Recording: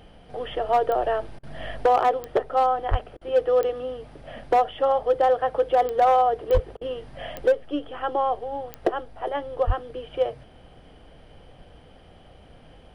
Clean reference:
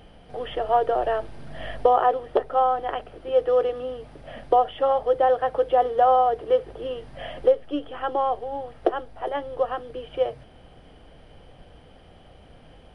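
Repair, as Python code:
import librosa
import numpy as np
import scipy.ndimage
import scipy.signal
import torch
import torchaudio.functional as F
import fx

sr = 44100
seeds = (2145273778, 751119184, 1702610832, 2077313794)

y = fx.fix_declip(x, sr, threshold_db=-13.0)
y = fx.fix_declick_ar(y, sr, threshold=10.0)
y = fx.highpass(y, sr, hz=140.0, slope=24, at=(2.9, 3.02), fade=0.02)
y = fx.highpass(y, sr, hz=140.0, slope=24, at=(6.53, 6.65), fade=0.02)
y = fx.highpass(y, sr, hz=140.0, slope=24, at=(9.66, 9.78), fade=0.02)
y = fx.fix_interpolate(y, sr, at_s=(1.39, 3.17, 6.77), length_ms=41.0)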